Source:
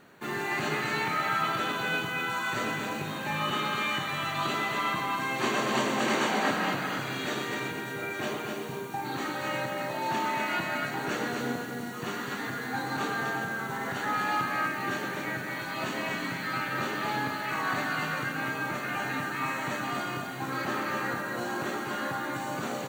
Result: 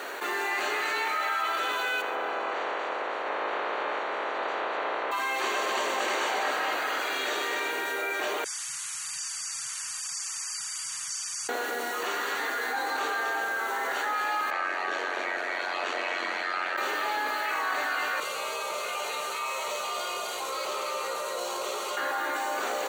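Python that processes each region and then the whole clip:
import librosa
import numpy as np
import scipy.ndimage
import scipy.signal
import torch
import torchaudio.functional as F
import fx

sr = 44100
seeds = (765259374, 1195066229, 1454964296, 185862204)

y = fx.spec_clip(x, sr, under_db=24, at=(2.0, 5.11), fade=0.02)
y = fx.lowpass(y, sr, hz=1200.0, slope=12, at=(2.0, 5.11), fade=0.02)
y = fx.echo_feedback(y, sr, ms=141, feedback_pct=50, wet_db=-18.0, at=(2.0, 5.11), fade=0.02)
y = fx.chain(y, sr, fx.brickwall_bandstop(low_hz=150.0, high_hz=4500.0),
    fx.resample_bad(factor=2, down='none', up='filtered'), at=(8.44, 11.49))
y = fx.lowpass(y, sr, hz=5700.0, slope=12, at=(14.5, 16.76), fade=0.02)
y = fx.dmg_tone(y, sr, hz=670.0, level_db=-44.0, at=(14.5, 16.76), fade=0.02)
y = fx.ring_mod(y, sr, carrier_hz=45.0, at=(14.5, 16.76), fade=0.02)
y = fx.chain(y, sr, fx.peak_eq(hz=780.0, db=-14.0, octaves=0.48),
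    fx.fixed_phaser(hz=700.0, stages=4),
    fx.resample_linear(factor=2), at=(18.2, 21.97))
y = scipy.signal.sosfilt(scipy.signal.butter(4, 410.0, 'highpass', fs=sr, output='sos'), y)
y = fx.env_flatten(y, sr, amount_pct=70)
y = y * 10.0 ** (-2.0 / 20.0)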